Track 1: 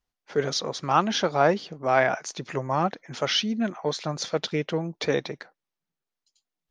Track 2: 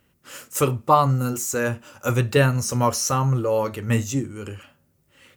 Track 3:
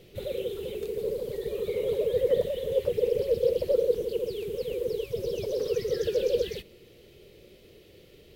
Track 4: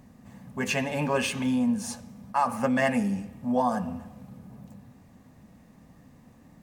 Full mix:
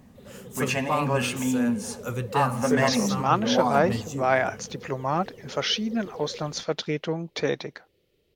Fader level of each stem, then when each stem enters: -1.0 dB, -10.0 dB, -15.5 dB, +0.5 dB; 2.35 s, 0.00 s, 0.00 s, 0.00 s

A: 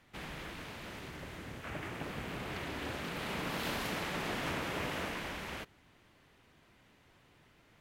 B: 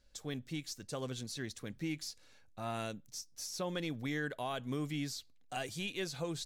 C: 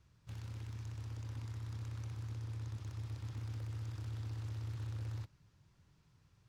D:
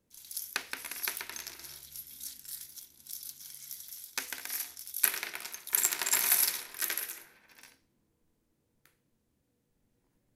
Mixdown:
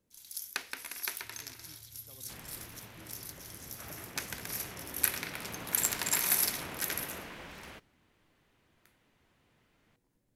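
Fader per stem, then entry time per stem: -6.5 dB, -20.0 dB, -16.5 dB, -2.0 dB; 2.15 s, 1.15 s, 0.95 s, 0.00 s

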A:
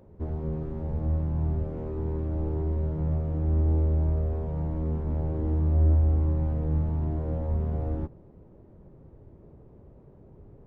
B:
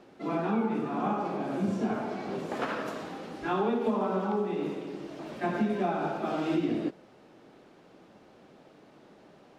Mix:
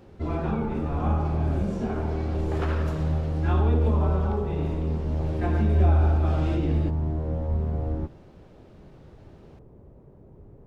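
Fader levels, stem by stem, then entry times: +1.5 dB, -1.5 dB; 0.00 s, 0.00 s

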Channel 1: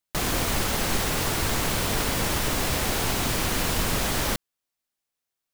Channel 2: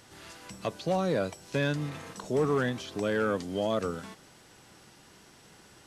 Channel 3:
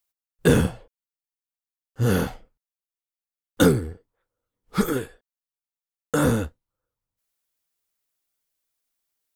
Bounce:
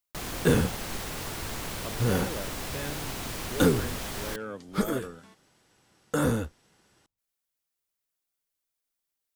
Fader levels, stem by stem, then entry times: -10.0 dB, -9.5 dB, -5.0 dB; 0.00 s, 1.20 s, 0.00 s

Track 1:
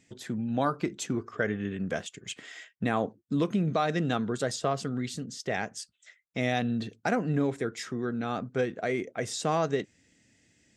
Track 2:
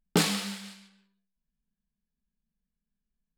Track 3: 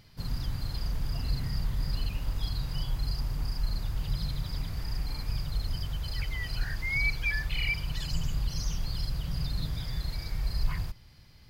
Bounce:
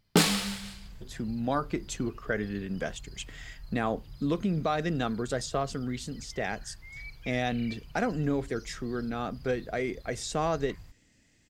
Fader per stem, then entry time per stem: -1.5 dB, +2.0 dB, -16.0 dB; 0.90 s, 0.00 s, 0.00 s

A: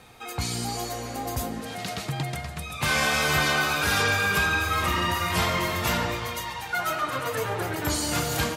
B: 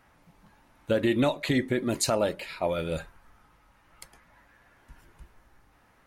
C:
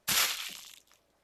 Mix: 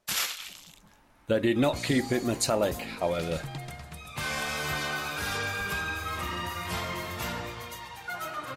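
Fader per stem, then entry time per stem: -8.5 dB, -0.5 dB, -2.0 dB; 1.35 s, 0.40 s, 0.00 s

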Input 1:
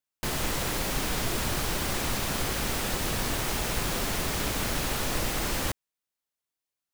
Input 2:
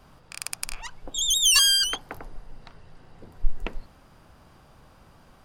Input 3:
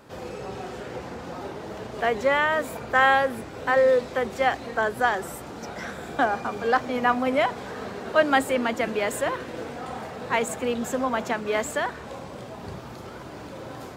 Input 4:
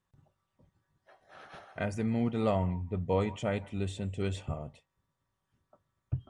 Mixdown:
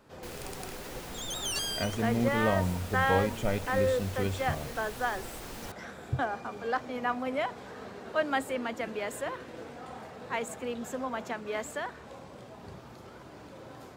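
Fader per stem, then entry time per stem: -14.5 dB, -15.5 dB, -9.0 dB, +1.0 dB; 0.00 s, 0.00 s, 0.00 s, 0.00 s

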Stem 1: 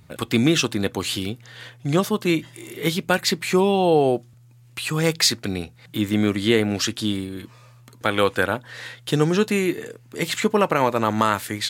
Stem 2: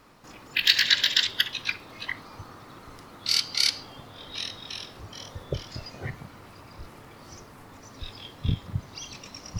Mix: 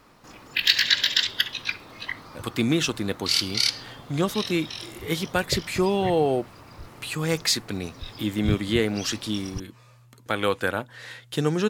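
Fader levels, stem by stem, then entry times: -4.5 dB, +0.5 dB; 2.25 s, 0.00 s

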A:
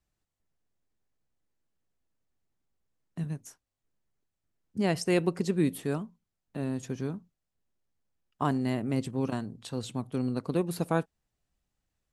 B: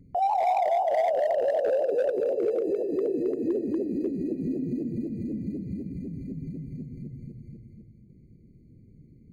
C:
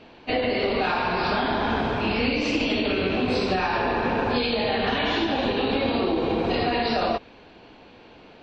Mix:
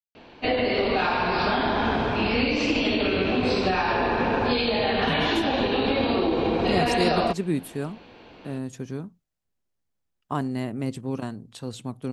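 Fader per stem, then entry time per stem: +0.5 dB, mute, +0.5 dB; 1.90 s, mute, 0.15 s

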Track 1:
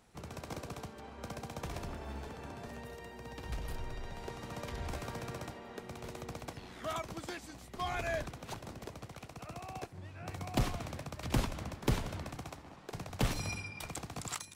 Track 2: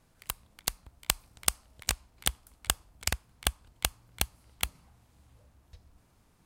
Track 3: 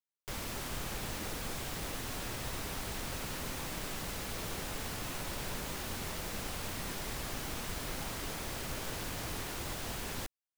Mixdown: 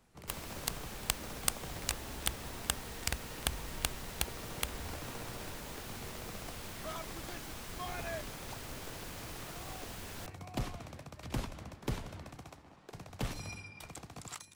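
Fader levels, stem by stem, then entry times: -5.5 dB, -5.5 dB, -6.0 dB; 0.00 s, 0.00 s, 0.00 s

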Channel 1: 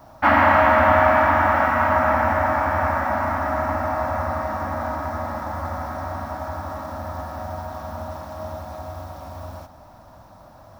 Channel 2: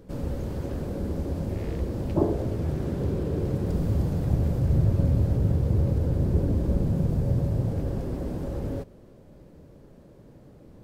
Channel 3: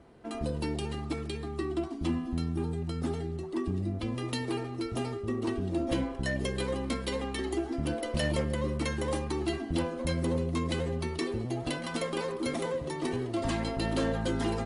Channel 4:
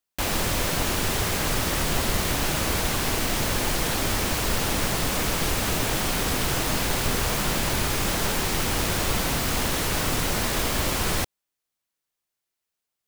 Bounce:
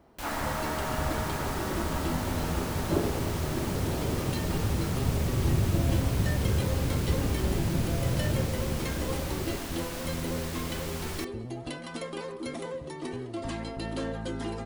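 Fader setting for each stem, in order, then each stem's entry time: -19.0 dB, -4.5 dB, -4.0 dB, -13.0 dB; 0.00 s, 0.75 s, 0.00 s, 0.00 s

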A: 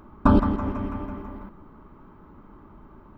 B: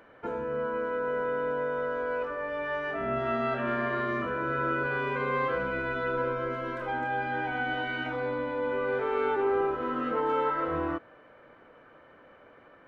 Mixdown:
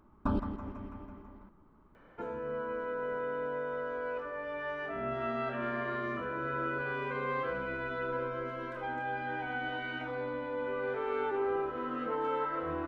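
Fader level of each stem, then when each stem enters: -14.0 dB, -5.5 dB; 0.00 s, 1.95 s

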